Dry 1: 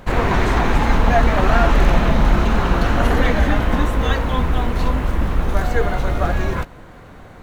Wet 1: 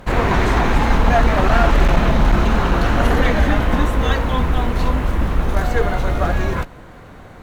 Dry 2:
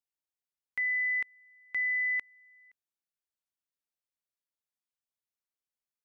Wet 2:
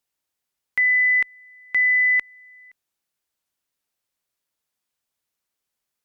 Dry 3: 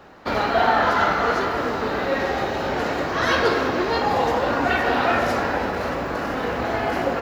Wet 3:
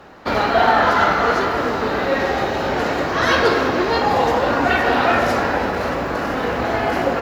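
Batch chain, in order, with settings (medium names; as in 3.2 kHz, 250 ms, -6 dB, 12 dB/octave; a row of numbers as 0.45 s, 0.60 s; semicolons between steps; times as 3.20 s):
one-sided clip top -9.5 dBFS; normalise loudness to -18 LUFS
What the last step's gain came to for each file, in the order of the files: +1.0 dB, +11.5 dB, +3.5 dB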